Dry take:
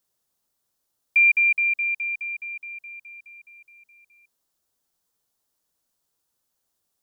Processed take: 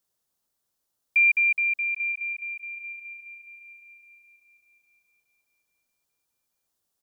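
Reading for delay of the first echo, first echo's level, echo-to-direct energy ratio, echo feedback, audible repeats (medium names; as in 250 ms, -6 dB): 805 ms, -19.0 dB, -18.0 dB, 41%, 3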